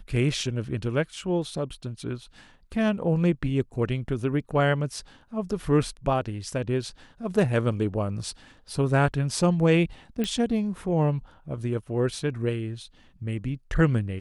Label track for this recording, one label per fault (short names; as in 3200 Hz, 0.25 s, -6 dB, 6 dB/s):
10.240000	10.240000	pop -15 dBFS